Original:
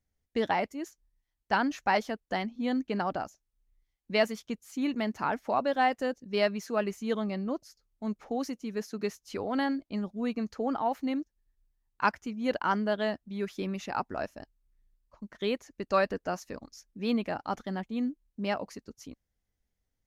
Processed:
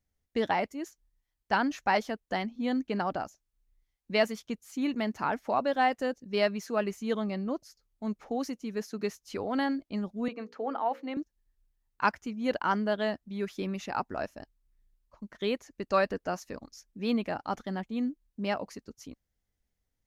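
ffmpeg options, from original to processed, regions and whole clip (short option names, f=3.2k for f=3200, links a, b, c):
-filter_complex "[0:a]asettb=1/sr,asplit=3[a][b][c];[a]atrim=end=10.284[d];[b]atrim=start=10.28:end=11.17,asetpts=PTS-STARTPTS,afade=t=in:d=0.004:c=qsin,afade=t=out:st=0.886:d=0.004:c=qsin,acrossover=split=290 3900:gain=0.1 1 0.2[e][f][g];[e][f][g]amix=inputs=3:normalize=0,bandreject=f=60:t=h:w=6,bandreject=f=120:t=h:w=6,bandreject=f=180:t=h:w=6,bandreject=f=240:t=h:w=6,bandreject=f=300:t=h:w=6,bandreject=f=360:t=h:w=6,bandreject=f=420:t=h:w=6,bandreject=f=480:t=h:w=6,bandreject=f=540:t=h:w=6[h];[c]atrim=start=11.166[i];[d][h]acrossfade=d=0.004:c1=hsin:c2=qsin[j];[j][i]acrossfade=d=0.004:c1=qsin:c2=hsin"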